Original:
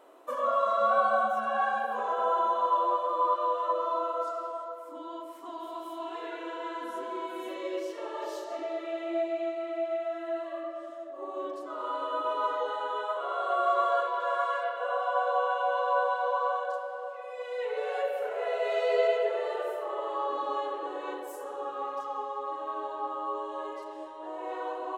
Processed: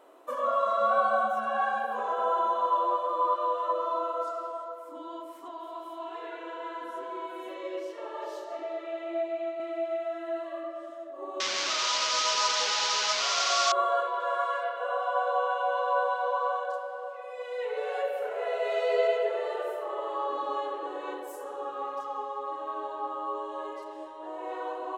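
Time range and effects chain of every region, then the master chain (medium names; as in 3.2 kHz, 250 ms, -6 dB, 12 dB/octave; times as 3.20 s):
5.48–9.60 s: high-pass 370 Hz + treble shelf 3.6 kHz -7 dB
11.40–13.72 s: one-bit delta coder 32 kbps, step -26.5 dBFS + tilt EQ +5.5 dB/octave
whole clip: none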